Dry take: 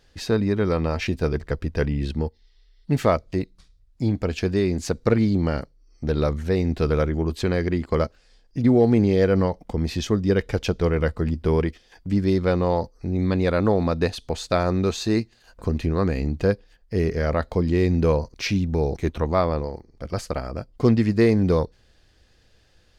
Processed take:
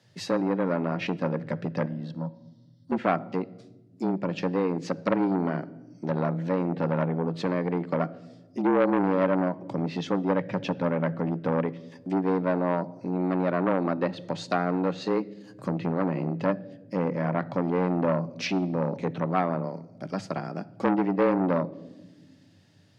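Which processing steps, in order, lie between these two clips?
treble cut that deepens with the level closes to 1,900 Hz, closed at −19 dBFS
frequency shifter +89 Hz
0:01.86–0:02.92: phaser with its sweep stopped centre 960 Hz, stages 4
on a send at −17.5 dB: convolution reverb RT60 1.2 s, pre-delay 4 ms
on the sum: saturating transformer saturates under 1,000 Hz
level −3 dB

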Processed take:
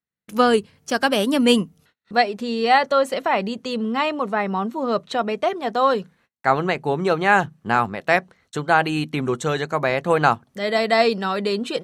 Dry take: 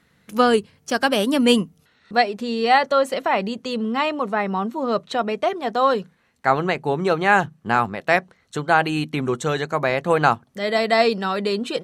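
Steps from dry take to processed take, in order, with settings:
noise gate −54 dBFS, range −33 dB

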